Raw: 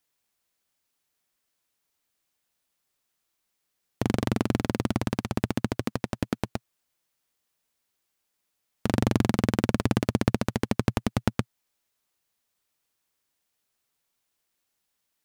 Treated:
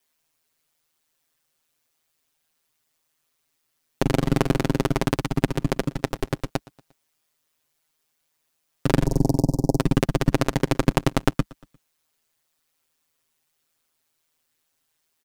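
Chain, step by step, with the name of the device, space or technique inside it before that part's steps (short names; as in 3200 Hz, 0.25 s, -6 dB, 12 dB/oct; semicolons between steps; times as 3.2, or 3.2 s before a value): 9.06–9.79 elliptic band-stop 800–5100 Hz, stop band 40 dB; ring-modulated robot voice (ring modulator 79 Hz; comb 7.5 ms, depth 84%); feedback echo 0.117 s, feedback 48%, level -23 dB; gain +5.5 dB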